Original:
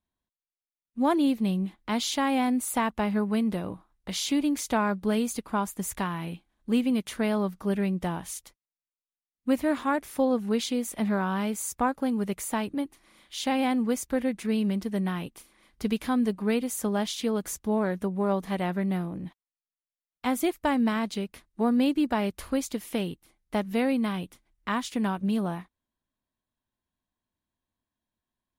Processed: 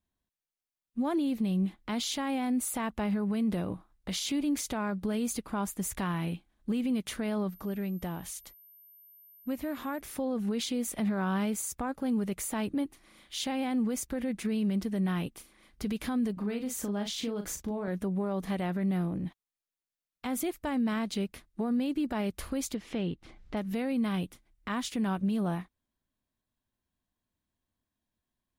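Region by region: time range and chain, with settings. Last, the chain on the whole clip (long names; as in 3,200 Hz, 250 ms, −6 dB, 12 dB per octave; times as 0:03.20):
0:07.49–0:09.99: downward compressor 2 to 1, threshold −39 dBFS + steady tone 13,000 Hz −54 dBFS
0:16.33–0:17.88: parametric band 11,000 Hz −7.5 dB 0.6 octaves + downward compressor 5 to 1, threshold −32 dBFS + double-tracking delay 39 ms −7 dB
0:22.74–0:23.57: high-frequency loss of the air 140 metres + upward compression, threshold −39 dBFS
whole clip: parametric band 960 Hz −3 dB 0.31 octaves; brickwall limiter −24.5 dBFS; low-shelf EQ 240 Hz +3.5 dB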